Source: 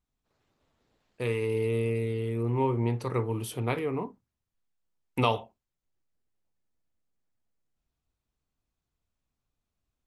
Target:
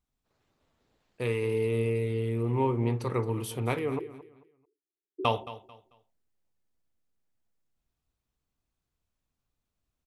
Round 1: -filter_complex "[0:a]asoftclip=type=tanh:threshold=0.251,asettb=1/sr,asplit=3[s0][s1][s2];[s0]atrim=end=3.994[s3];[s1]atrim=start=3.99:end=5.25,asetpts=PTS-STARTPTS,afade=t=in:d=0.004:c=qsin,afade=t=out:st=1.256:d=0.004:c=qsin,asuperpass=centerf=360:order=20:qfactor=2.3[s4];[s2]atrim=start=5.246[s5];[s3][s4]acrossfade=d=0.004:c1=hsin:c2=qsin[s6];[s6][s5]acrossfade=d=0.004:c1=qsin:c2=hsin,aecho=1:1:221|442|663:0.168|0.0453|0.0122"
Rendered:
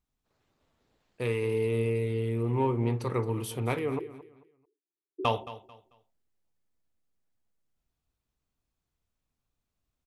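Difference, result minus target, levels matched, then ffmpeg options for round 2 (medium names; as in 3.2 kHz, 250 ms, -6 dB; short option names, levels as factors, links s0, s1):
saturation: distortion +11 dB
-filter_complex "[0:a]asoftclip=type=tanh:threshold=0.531,asettb=1/sr,asplit=3[s0][s1][s2];[s0]atrim=end=3.994[s3];[s1]atrim=start=3.99:end=5.25,asetpts=PTS-STARTPTS,afade=t=in:d=0.004:c=qsin,afade=t=out:st=1.256:d=0.004:c=qsin,asuperpass=centerf=360:order=20:qfactor=2.3[s4];[s2]atrim=start=5.246[s5];[s3][s4]acrossfade=d=0.004:c1=hsin:c2=qsin[s6];[s6][s5]acrossfade=d=0.004:c1=qsin:c2=hsin,aecho=1:1:221|442|663:0.168|0.0453|0.0122"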